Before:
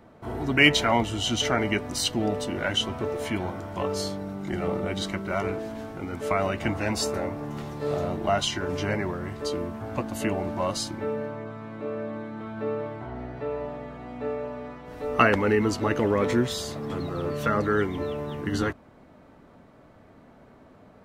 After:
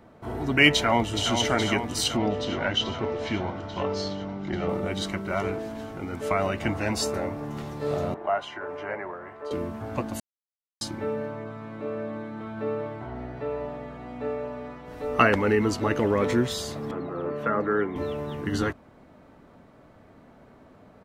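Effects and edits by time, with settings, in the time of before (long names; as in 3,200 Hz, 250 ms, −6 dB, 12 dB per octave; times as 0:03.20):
0:00.71–0:01.32: delay throw 420 ms, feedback 75%, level −7 dB
0:02.17–0:04.69: low-pass filter 5,500 Hz 24 dB per octave
0:08.14–0:09.51: three-way crossover with the lows and the highs turned down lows −20 dB, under 430 Hz, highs −23 dB, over 2,100 Hz
0:10.20–0:10.81: silence
0:16.91–0:17.96: three-way crossover with the lows and the highs turned down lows −13 dB, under 180 Hz, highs −20 dB, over 2,300 Hz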